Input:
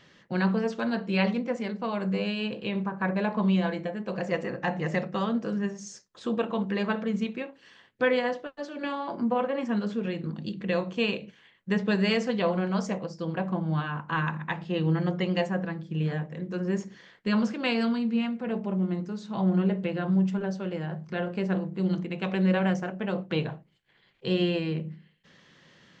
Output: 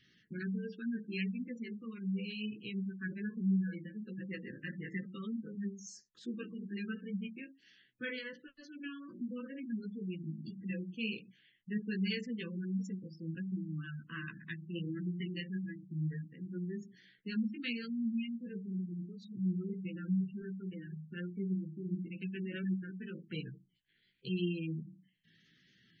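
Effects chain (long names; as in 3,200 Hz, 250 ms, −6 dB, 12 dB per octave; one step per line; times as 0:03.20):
chorus effect 1.4 Hz, delay 15.5 ms, depth 3 ms
Butterworth band-reject 750 Hz, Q 0.59
high-shelf EQ 5,200 Hz +4.5 dB
gate on every frequency bin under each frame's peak −20 dB strong
level −6 dB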